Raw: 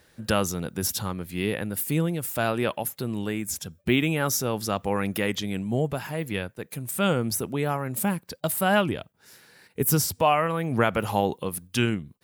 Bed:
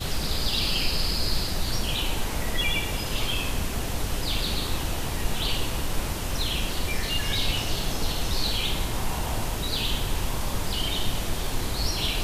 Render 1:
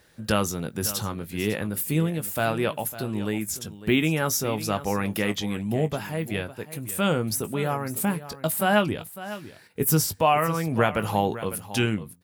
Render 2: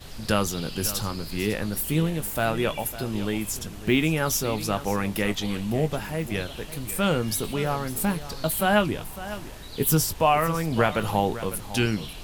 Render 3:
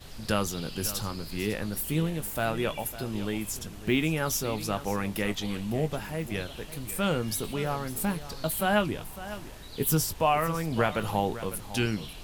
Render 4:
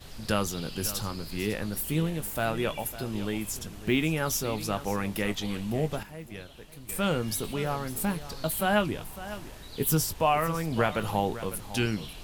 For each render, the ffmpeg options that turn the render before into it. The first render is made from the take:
ffmpeg -i in.wav -filter_complex "[0:a]asplit=2[link_01][link_02];[link_02]adelay=19,volume=-11.5dB[link_03];[link_01][link_03]amix=inputs=2:normalize=0,aecho=1:1:553:0.188" out.wav
ffmpeg -i in.wav -i bed.wav -filter_complex "[1:a]volume=-13dB[link_01];[0:a][link_01]amix=inputs=2:normalize=0" out.wav
ffmpeg -i in.wav -af "volume=-4dB" out.wav
ffmpeg -i in.wav -filter_complex "[0:a]asplit=3[link_01][link_02][link_03];[link_01]atrim=end=6.032[link_04];[link_02]atrim=start=6.028:end=6.892,asetpts=PTS-STARTPTS,volume=-9dB[link_05];[link_03]atrim=start=6.888[link_06];[link_04][link_05]acrossfade=duration=0.004:curve1=hsin:curve2=hsin[link_07];[link_07][link_06]acrossfade=duration=0.004:curve1=hsin:curve2=hsin" out.wav

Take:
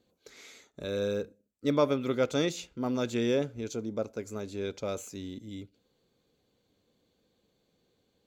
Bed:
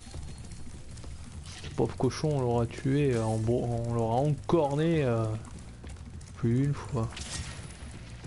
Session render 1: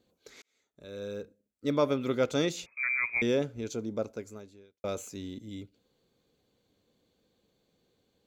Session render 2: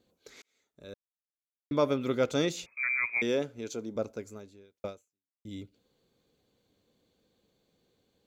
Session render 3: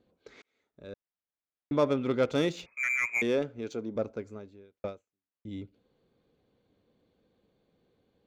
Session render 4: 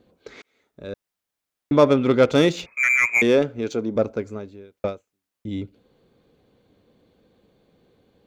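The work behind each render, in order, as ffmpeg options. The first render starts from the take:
ffmpeg -i in.wav -filter_complex "[0:a]asettb=1/sr,asplit=3[link_01][link_02][link_03];[link_01]atrim=end=2.664[link_04];[link_02]atrim=start=2.66:end=3.22,asetpts=PTS-STARTPTS,afade=type=in:duration=0.004:curve=qsin,afade=type=out:start_time=0.556:duration=0.004:curve=qsin,lowpass=frequency=2200:width_type=q:width=0.5098,lowpass=frequency=2200:width_type=q:width=0.6013,lowpass=frequency=2200:width_type=q:width=0.9,lowpass=frequency=2200:width_type=q:width=2.563,afreqshift=-2600[link_05];[link_03]atrim=start=3.216[link_06];[link_04][link_05]acrossfade=duration=0.004:curve1=hsin:curve2=qsin[link_07];[link_07][link_06]acrossfade=duration=0.004:curve1=qsin:curve2=hsin,asplit=3[link_08][link_09][link_10];[link_08]atrim=end=0.42,asetpts=PTS-STARTPTS,afade=type=out:start_time=0.416:duration=0.004:curve=hsin[link_11];[link_09]atrim=start=0.42:end=4.84,asetpts=PTS-STARTPTS,afade=type=in:duration=1.59,afade=type=out:start_time=3.68:duration=0.74:curve=qua[link_12];[link_10]atrim=start=4.84,asetpts=PTS-STARTPTS,afade=type=in:duration=0.004:curve=hsin[link_13];[link_11][link_12][link_13]concat=n=3:v=0:a=1" out.wav
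ffmpeg -i in.wav -filter_complex "[0:a]asettb=1/sr,asplit=3[link_01][link_02][link_03];[link_01]atrim=end=3.074[link_04];[link_02]atrim=start=3.07:end=3.96,asetpts=PTS-STARTPTS,afade=type=in:duration=0.004:curve=qsin,afade=type=out:start_time=0.886:duration=0.004:curve=qsin,highpass=frequency=260:poles=1[link_05];[link_03]atrim=start=3.956[link_06];[link_04][link_05]acrossfade=duration=0.004:curve1=hsin:curve2=qsin[link_07];[link_07][link_06]acrossfade=duration=0.004:curve1=qsin:curve2=hsin,asplit=4[link_08][link_09][link_10][link_11];[link_08]atrim=end=0.94,asetpts=PTS-STARTPTS,afade=type=out:start_time=0.936:duration=0.004:curve=hsin[link_12];[link_09]atrim=start=0.94:end=1.71,asetpts=PTS-STARTPTS,volume=0[link_13];[link_10]atrim=start=1.71:end=5.45,asetpts=PTS-STARTPTS,afade=type=in:duration=0.004:curve=hsin,afade=type=out:start_time=3.14:duration=0.6:curve=exp[link_14];[link_11]atrim=start=5.45,asetpts=PTS-STARTPTS,afade=type=in:duration=0.004:curve=hsin[link_15];[link_12][link_13][link_14][link_15]concat=n=4:v=0:a=1" out.wav
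ffmpeg -i in.wav -filter_complex "[0:a]asplit=2[link_01][link_02];[link_02]asoftclip=type=tanh:threshold=-31dB,volume=-10dB[link_03];[link_01][link_03]amix=inputs=2:normalize=0,adynamicsmooth=sensitivity=3.5:basefreq=3000" out.wav
ffmpeg -i in.wav -af "volume=10.5dB" out.wav

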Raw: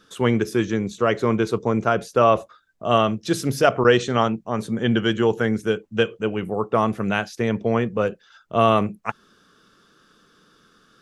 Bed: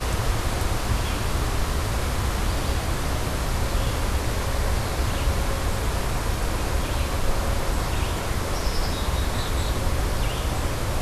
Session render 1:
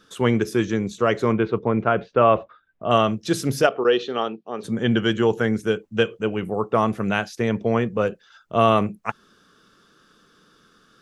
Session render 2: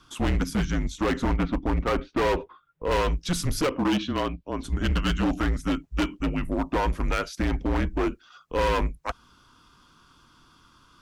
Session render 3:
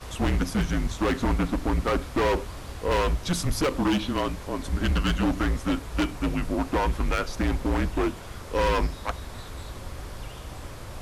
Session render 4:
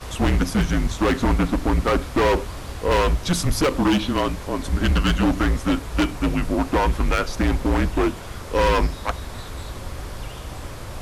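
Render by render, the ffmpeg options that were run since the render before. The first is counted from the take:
ffmpeg -i in.wav -filter_complex "[0:a]asettb=1/sr,asplit=3[link_01][link_02][link_03];[link_01]atrim=end=1.324[link_04];[link_02]atrim=start=1.32:end=2.91,asetpts=PTS-STARTPTS,afade=type=in:duration=0.004:curve=qsin,afade=type=out:start_time=1.586:duration=0.004:curve=qsin,lowpass=frequency=3100:width=0.5412,lowpass=frequency=3100:width=1.3066[link_05];[link_03]atrim=start=2.906[link_06];[link_04][link_05]acrossfade=duration=0.004:curve1=hsin:curve2=qsin[link_07];[link_07][link_06]acrossfade=duration=0.004:curve1=qsin:curve2=hsin,asplit=3[link_08][link_09][link_10];[link_08]afade=type=out:start_time=3.66:duration=0.02[link_11];[link_09]highpass=380,equalizer=frequency=410:width_type=q:width=4:gain=3,equalizer=frequency=620:width_type=q:width=4:gain=-6,equalizer=frequency=990:width_type=q:width=4:gain=-8,equalizer=frequency=1500:width_type=q:width=4:gain=-6,equalizer=frequency=2100:width_type=q:width=4:gain=-10,lowpass=frequency=4300:width=0.5412,lowpass=frequency=4300:width=1.3066,afade=type=in:start_time=3.66:duration=0.02,afade=type=out:start_time=4.63:duration=0.02[link_12];[link_10]afade=type=in:start_time=4.63:duration=0.02[link_13];[link_11][link_12][link_13]amix=inputs=3:normalize=0" out.wav
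ffmpeg -i in.wav -af "afreqshift=-160,asoftclip=type=hard:threshold=-20.5dB" out.wav
ffmpeg -i in.wav -i bed.wav -filter_complex "[1:a]volume=-13.5dB[link_01];[0:a][link_01]amix=inputs=2:normalize=0" out.wav
ffmpeg -i in.wav -af "volume=5dB" out.wav

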